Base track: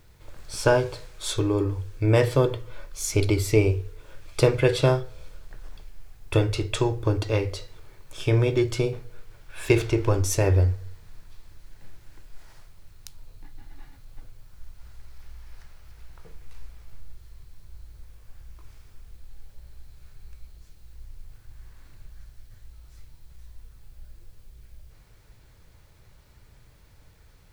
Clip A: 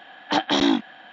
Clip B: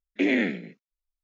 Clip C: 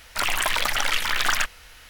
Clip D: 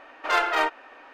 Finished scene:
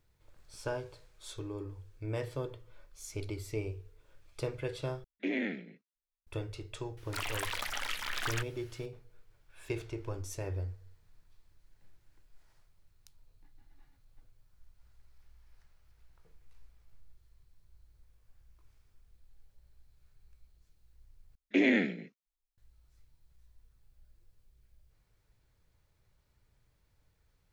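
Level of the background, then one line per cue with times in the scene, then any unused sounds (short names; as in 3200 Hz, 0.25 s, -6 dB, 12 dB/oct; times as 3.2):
base track -17 dB
5.04 replace with B -10.5 dB + LPF 5300 Hz
6.97 add C -13.5 dB
21.35 replace with B -3 dB
not used: A, D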